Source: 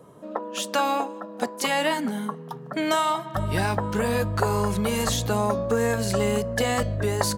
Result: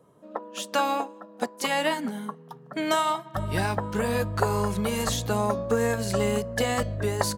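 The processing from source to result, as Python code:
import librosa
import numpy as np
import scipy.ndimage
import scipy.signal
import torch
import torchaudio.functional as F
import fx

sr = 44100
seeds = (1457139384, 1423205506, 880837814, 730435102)

y = fx.upward_expand(x, sr, threshold_db=-38.0, expansion=1.5)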